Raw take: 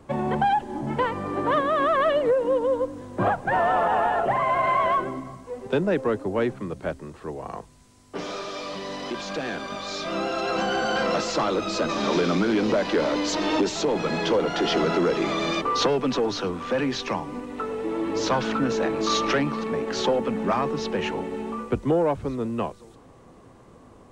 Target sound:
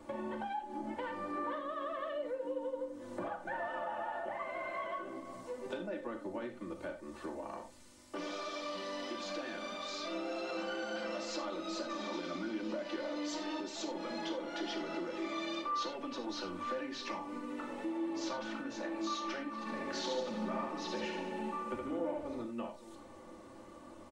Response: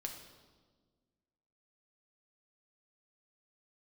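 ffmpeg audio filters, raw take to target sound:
-filter_complex "[0:a]lowshelf=frequency=130:gain=-9,aecho=1:1:3.4:0.83,acompressor=threshold=-36dB:ratio=5,asplit=3[link_01][link_02][link_03];[link_01]afade=type=out:start_time=19.65:duration=0.02[link_04];[link_02]aecho=1:1:70|147|231.7|324.9|427.4:0.631|0.398|0.251|0.158|0.1,afade=type=in:start_time=19.65:duration=0.02,afade=type=out:start_time=22.41:duration=0.02[link_05];[link_03]afade=type=in:start_time=22.41:duration=0.02[link_06];[link_04][link_05][link_06]amix=inputs=3:normalize=0[link_07];[1:a]atrim=start_sample=2205,atrim=end_sample=4410[link_08];[link_07][link_08]afir=irnorm=-1:irlink=0,volume=-1dB"

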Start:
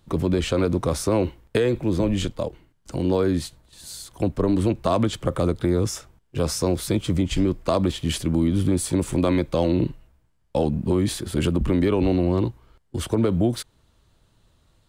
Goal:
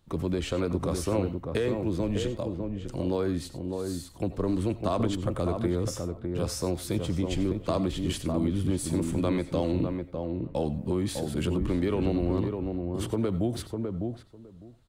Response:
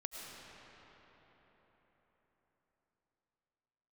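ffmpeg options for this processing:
-filter_complex "[0:a]asplit=2[link_01][link_02];[link_02]adelay=603,lowpass=frequency=1000:poles=1,volume=-4dB,asplit=2[link_03][link_04];[link_04]adelay=603,lowpass=frequency=1000:poles=1,volume=0.15,asplit=2[link_05][link_06];[link_06]adelay=603,lowpass=frequency=1000:poles=1,volume=0.15[link_07];[link_01][link_03][link_05][link_07]amix=inputs=4:normalize=0[link_08];[1:a]atrim=start_sample=2205,atrim=end_sample=4410[link_09];[link_08][link_09]afir=irnorm=-1:irlink=0,volume=-2.5dB"

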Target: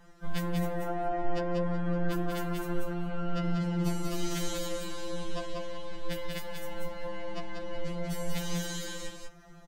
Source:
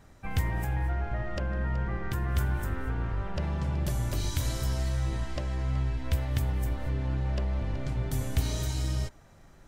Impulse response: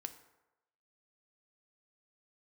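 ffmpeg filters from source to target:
-filter_complex "[0:a]aecho=1:1:189:0.668,asplit=2[link_01][link_02];[1:a]atrim=start_sample=2205,asetrate=33957,aresample=44100,lowpass=6600[link_03];[link_02][link_03]afir=irnorm=-1:irlink=0,volume=-5dB[link_04];[link_01][link_04]amix=inputs=2:normalize=0,afftfilt=real='re*2.83*eq(mod(b,8),0)':imag='im*2.83*eq(mod(b,8),0)':win_size=2048:overlap=0.75"

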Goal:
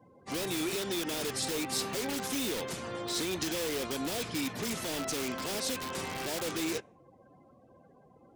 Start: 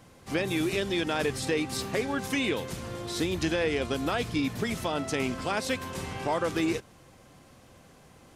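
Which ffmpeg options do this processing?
ffmpeg -i in.wav -filter_complex "[0:a]afftdn=noise_reduction=29:noise_floor=-52,highpass=frequency=360:poles=1,acrossover=split=580|3700[link_01][link_02][link_03];[link_01]alimiter=level_in=8dB:limit=-24dB:level=0:latency=1,volume=-8dB[link_04];[link_02]aeval=exprs='(mod(59.6*val(0)+1,2)-1)/59.6':channel_layout=same[link_05];[link_04][link_05][link_03]amix=inputs=3:normalize=0,volume=2.5dB" out.wav

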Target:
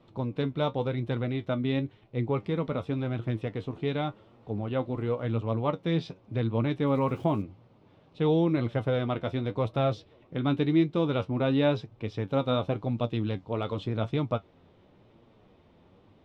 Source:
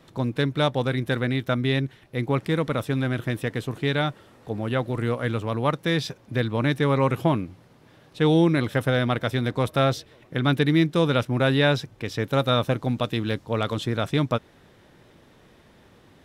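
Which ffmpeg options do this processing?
ffmpeg -i in.wav -filter_complex "[0:a]lowpass=2800,equalizer=frequency=1700:width_type=o:width=0.57:gain=-11.5,asettb=1/sr,asplit=3[link_01][link_02][link_03];[link_01]atrim=end=6.874[link_04];[link_02]atrim=start=6.87:end=7.42,asetpts=PTS-STARTPTS,afade=type=in:duration=0.004:curve=qsin,afade=type=out:start_time=0.546:duration=0.004:curve=qsin,aeval=exprs='val(0)*gte(abs(val(0)),0.00422)':channel_layout=same[link_05];[link_03]atrim=start=7.416[link_06];[link_04][link_05]acrossfade=duration=0.004:curve1=hsin:curve2=qsin[link_07];[link_07][link_06]acrossfade=duration=0.004:curve1=qsin:curve2=hsin,flanger=delay=8.4:depth=3.6:regen=54:speed=0.92:shape=triangular" out.wav

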